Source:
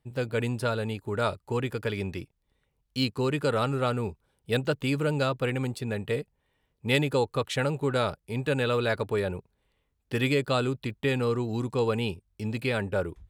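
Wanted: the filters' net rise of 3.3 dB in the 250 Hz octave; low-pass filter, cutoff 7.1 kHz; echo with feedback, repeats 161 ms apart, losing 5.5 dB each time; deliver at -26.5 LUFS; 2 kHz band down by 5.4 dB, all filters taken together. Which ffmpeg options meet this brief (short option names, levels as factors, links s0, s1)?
-af "lowpass=7100,equalizer=f=250:t=o:g=4,equalizer=f=2000:t=o:g=-7.5,aecho=1:1:161|322|483|644|805|966|1127:0.531|0.281|0.149|0.079|0.0419|0.0222|0.0118,volume=1.06"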